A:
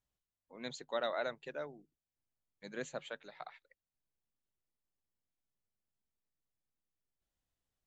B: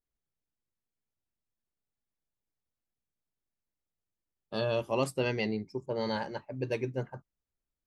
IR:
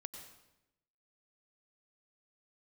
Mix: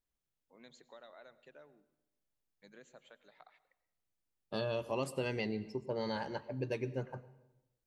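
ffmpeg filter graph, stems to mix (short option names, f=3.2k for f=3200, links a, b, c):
-filter_complex "[0:a]acompressor=threshold=-47dB:ratio=3,volume=-11dB,asplit=2[a][b];[b]volume=-4dB[c];[1:a]volume=-3dB,asplit=2[d][e];[e]volume=-6.5dB[f];[2:a]atrim=start_sample=2205[g];[c][f]amix=inputs=2:normalize=0[h];[h][g]afir=irnorm=-1:irlink=0[i];[a][d][i]amix=inputs=3:normalize=0,acompressor=threshold=-34dB:ratio=2.5"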